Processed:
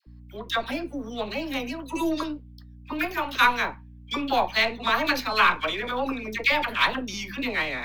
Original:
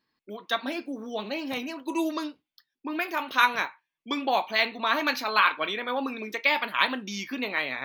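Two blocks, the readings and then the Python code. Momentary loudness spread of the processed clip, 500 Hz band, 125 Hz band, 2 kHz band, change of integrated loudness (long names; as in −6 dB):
12 LU, +2.0 dB, can't be measured, +2.0 dB, +2.0 dB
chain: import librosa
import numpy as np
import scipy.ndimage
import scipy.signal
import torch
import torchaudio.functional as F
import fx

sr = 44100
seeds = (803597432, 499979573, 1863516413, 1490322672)

y = np.where(x < 0.0, 10.0 ** (-3.0 / 20.0) * x, x)
y = fx.hum_notches(y, sr, base_hz=50, count=4)
y = fx.add_hum(y, sr, base_hz=60, snr_db=19)
y = fx.dispersion(y, sr, late='lows', ms=69.0, hz=880.0)
y = F.gain(torch.from_numpy(y), 3.0).numpy()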